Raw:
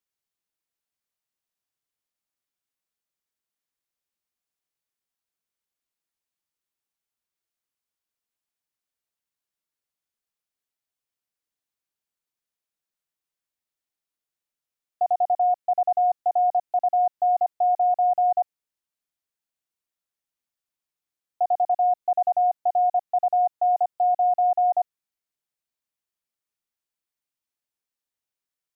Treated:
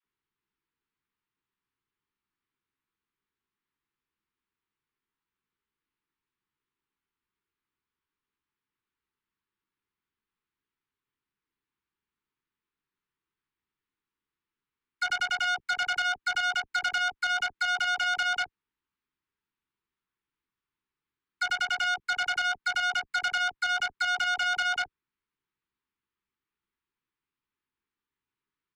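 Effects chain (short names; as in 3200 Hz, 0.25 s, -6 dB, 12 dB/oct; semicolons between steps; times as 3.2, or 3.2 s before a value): self-modulated delay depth 0.2 ms; Chebyshev band-stop 410–950 Hz, order 2; air absorption 370 m; doubler 15 ms -9 dB; hard clip -26 dBFS, distortion -34 dB; dispersion lows, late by 48 ms, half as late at 650 Hz; core saturation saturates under 2600 Hz; gain +8 dB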